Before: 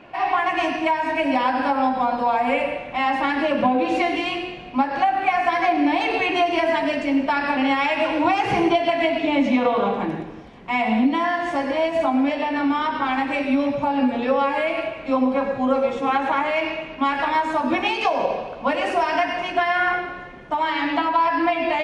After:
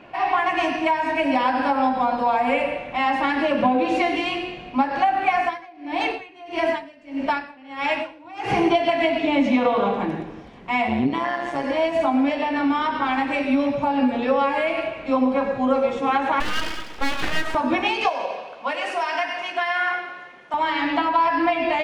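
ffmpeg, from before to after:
ffmpeg -i in.wav -filter_complex "[0:a]asettb=1/sr,asplit=3[link_01][link_02][link_03];[link_01]atrim=end=5.414[link_04];[link_02]atrim=start=5.41:end=8.57,asetpts=PTS-STARTPTS,afade=type=in:duration=0.004:curve=qsin,afade=type=out:start_time=3.156:duration=0.004:curve=qsin,aeval=exprs='val(0)*pow(10,-26*(0.5-0.5*cos(2*PI*1.6*n/s))/20)':channel_layout=same[link_05];[link_03]atrim=start=8.566[link_06];[link_04][link_05]acrossfade=duration=0.004:curve1=hsin:curve2=qsin[link_07];[link_07][link_06]acrossfade=duration=0.004:curve1=qsin:curve2=hsin,asplit=3[link_08][link_09][link_10];[link_08]afade=type=out:start_time=10.86:duration=0.02[link_11];[link_09]tremolo=f=130:d=0.667,afade=type=in:start_time=10.86:duration=0.02,afade=type=out:start_time=11.63:duration=0.02[link_12];[link_10]afade=type=in:start_time=11.63:duration=0.02[link_13];[link_11][link_12][link_13]amix=inputs=3:normalize=0,asettb=1/sr,asplit=3[link_14][link_15][link_16];[link_14]atrim=end=16.404[link_17];[link_15]atrim=start=16.4:end=17.55,asetpts=PTS-STARTPTS,afade=type=in:duration=0.004:curve=qsin,afade=type=out:start_time=1.146:duration=0.004:curve=qsin,aeval=exprs='abs(val(0))':channel_layout=same[link_18];[link_16]atrim=start=17.546[link_19];[link_17][link_18]acrossfade=duration=0.004:curve1=hsin:curve2=qsin[link_20];[link_20][link_19]acrossfade=duration=0.004:curve1=qsin:curve2=hsin,asettb=1/sr,asplit=3[link_21][link_22][link_23];[link_21]atrim=end=18.094[link_24];[link_22]atrim=start=18.09:end=20.54,asetpts=PTS-STARTPTS,afade=type=in:duration=0.004:curve=qsin,afade=type=out:start_time=2.446:duration=0.004:curve=qsin,highpass=frequency=1000:poles=1[link_25];[link_23]atrim=start=20.536[link_26];[link_24][link_25]acrossfade=duration=0.004:curve1=hsin:curve2=qsin[link_27];[link_27][link_26]acrossfade=duration=0.004:curve1=qsin:curve2=hsin" out.wav

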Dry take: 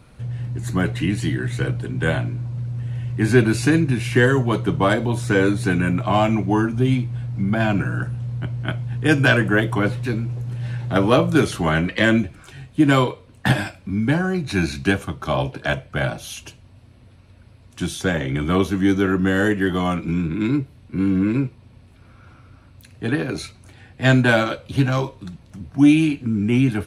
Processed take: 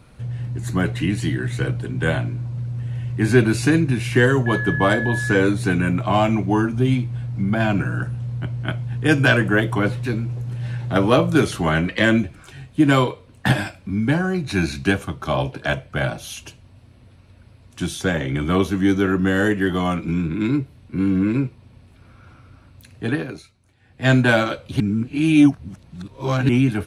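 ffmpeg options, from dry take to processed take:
ffmpeg -i in.wav -filter_complex "[0:a]asettb=1/sr,asplit=3[link_01][link_02][link_03];[link_01]atrim=end=4.464[link_04];[link_02]atrim=start=4.46:end=5.36,asetpts=PTS-STARTPTS,afade=type=in:duration=0.004:curve=qsin,afade=type=out:start_time=0.896:duration=0.004:curve=qsin,aeval=exprs='val(0)+0.0631*sin(2*PI*1700*n/s)':channel_layout=same[link_05];[link_03]atrim=start=5.356[link_06];[link_04][link_05]acrossfade=duration=0.004:curve1=hsin:curve2=qsin[link_07];[link_07][link_06]acrossfade=duration=0.004:curve1=qsin:curve2=hsin,asplit=5[link_08][link_09][link_10][link_11][link_12];[link_08]atrim=end=23.43,asetpts=PTS-STARTPTS,afade=type=out:start_time=23.1:duration=0.33:silence=0.177828[link_13];[link_09]atrim=start=23.43:end=23.8,asetpts=PTS-STARTPTS,volume=-15dB[link_14];[link_10]atrim=start=23.8:end=24.802,asetpts=PTS-STARTPTS,afade=type=in:duration=0.33:silence=0.177828[link_15];[link_11]atrim=start=24.798:end=26.492,asetpts=PTS-STARTPTS,areverse[link_16];[link_12]atrim=start=26.488[link_17];[link_13][link_14][link_15]concat=n=3:v=0:a=1[link_18];[link_18][link_16]acrossfade=duration=0.004:curve1=hsin:curve2=hsin[link_19];[link_19][link_17]acrossfade=duration=0.004:curve1=hsin:curve2=hsin" out.wav

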